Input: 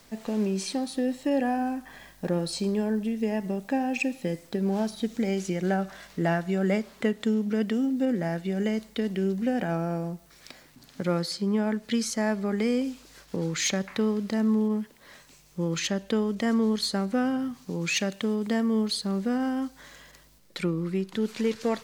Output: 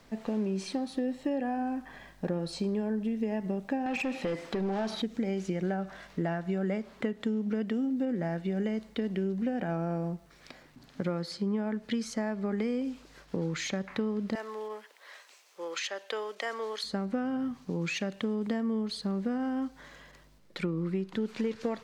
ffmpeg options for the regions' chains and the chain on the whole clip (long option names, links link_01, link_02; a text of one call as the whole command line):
ffmpeg -i in.wav -filter_complex "[0:a]asettb=1/sr,asplit=3[link_01][link_02][link_03];[link_01]atrim=end=3.864[link_04];[link_02]atrim=start=3.86:end=5.02,asetpts=PTS-STARTPTS,afade=type=in:duration=0.004:curve=qsin,afade=type=out:start_time=1.156:duration=0.004:curve=qsin,highshelf=frequency=9000:gain=-11.5,acompressor=threshold=-32dB:ratio=2:attack=3.2:release=140:knee=1:detection=peak,asplit=2[link_05][link_06];[link_06]highpass=frequency=720:poles=1,volume=21dB,asoftclip=type=tanh:threshold=-20dB[link_07];[link_05][link_07]amix=inputs=2:normalize=0,lowpass=frequency=7700:poles=1,volume=-6dB[link_08];[link_03]atrim=start=5.016[link_09];[link_04][link_08]acrossfade=duration=0.004:curve1=hsin:curve2=qsin[link_10];[link_10][link_09]acrossfade=duration=0.004:curve1=qsin:curve2=hsin,asettb=1/sr,asplit=3[link_11][link_12][link_13];[link_11]atrim=end=14.354[link_14];[link_12]atrim=start=14.35:end=16.84,asetpts=PTS-STARTPTS,afade=type=in:duration=0.004:curve=qsin,afade=type=out:start_time=2.486:duration=0.004:curve=qsin,highpass=frequency=440:width=0.5412,highpass=frequency=440:width=1.3066,tiltshelf=frequency=820:gain=-5[link_15];[link_13]atrim=start=16.836[link_16];[link_14][link_15]acrossfade=duration=0.004:curve1=hsin:curve2=qsin[link_17];[link_17][link_16]acrossfade=duration=0.004:curve1=qsin:curve2=hsin,acompressor=threshold=-27dB:ratio=6,lowpass=frequency=2400:poles=1" out.wav